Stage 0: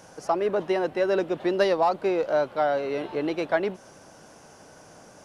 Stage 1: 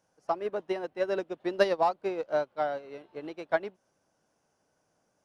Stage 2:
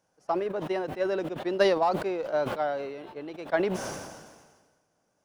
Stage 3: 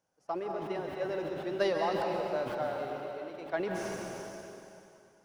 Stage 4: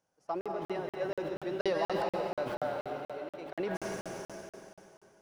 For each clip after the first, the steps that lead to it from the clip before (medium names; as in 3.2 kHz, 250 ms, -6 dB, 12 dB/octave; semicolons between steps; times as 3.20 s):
upward expansion 2.5:1, over -34 dBFS
decay stretcher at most 40 dB/s
plate-style reverb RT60 2.7 s, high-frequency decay 0.95×, pre-delay 115 ms, DRR 1 dB; trim -7.5 dB
crackling interface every 0.24 s, samples 2048, zero, from 0.41 s